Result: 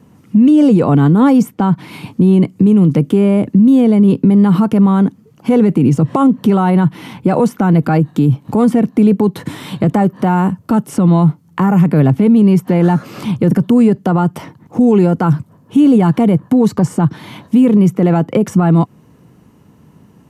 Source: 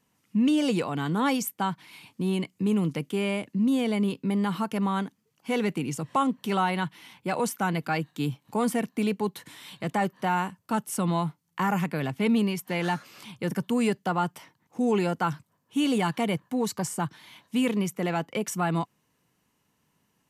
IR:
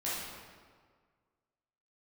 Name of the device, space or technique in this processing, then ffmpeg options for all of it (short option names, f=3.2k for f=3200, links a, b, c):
mastering chain: -filter_complex "[0:a]highpass=49,equalizer=f=1.3k:t=o:w=0.35:g=3,acrossover=split=1800|6600[a][b][c];[a]acompressor=threshold=-26dB:ratio=4[d];[b]acompressor=threshold=-43dB:ratio=4[e];[c]acompressor=threshold=-48dB:ratio=4[f];[d][e][f]amix=inputs=3:normalize=0,acompressor=threshold=-36dB:ratio=1.5,tiltshelf=f=800:g=10,alimiter=level_in=23dB:limit=-1dB:release=50:level=0:latency=1,volume=-2.5dB"